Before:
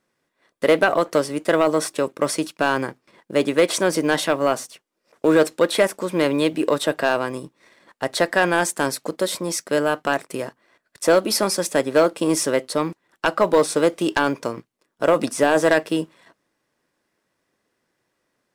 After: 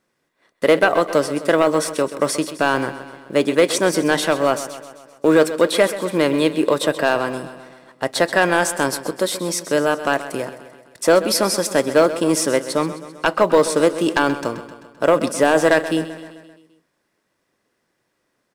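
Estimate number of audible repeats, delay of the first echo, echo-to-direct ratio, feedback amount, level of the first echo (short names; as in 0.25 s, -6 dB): 5, 0.13 s, -11.5 dB, 58%, -13.5 dB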